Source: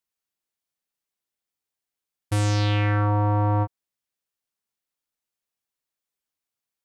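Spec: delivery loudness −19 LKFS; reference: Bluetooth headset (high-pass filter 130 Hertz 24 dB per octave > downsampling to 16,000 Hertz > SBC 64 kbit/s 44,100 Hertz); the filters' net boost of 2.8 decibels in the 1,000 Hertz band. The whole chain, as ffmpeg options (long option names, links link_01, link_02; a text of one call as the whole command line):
ffmpeg -i in.wav -af "highpass=frequency=130:width=0.5412,highpass=frequency=130:width=1.3066,equalizer=frequency=1000:width_type=o:gain=3.5,aresample=16000,aresample=44100,volume=6.5dB" -ar 44100 -c:a sbc -b:a 64k out.sbc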